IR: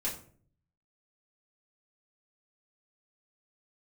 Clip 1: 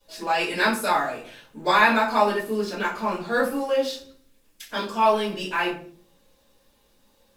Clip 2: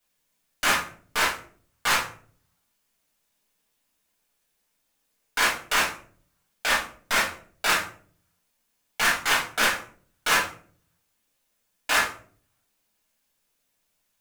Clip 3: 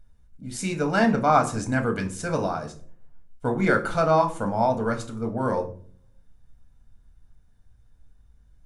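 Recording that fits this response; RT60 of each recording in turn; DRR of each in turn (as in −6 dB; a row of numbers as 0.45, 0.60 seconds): 2; 0.50, 0.50, 0.50 seconds; −14.0, −6.0, 4.0 decibels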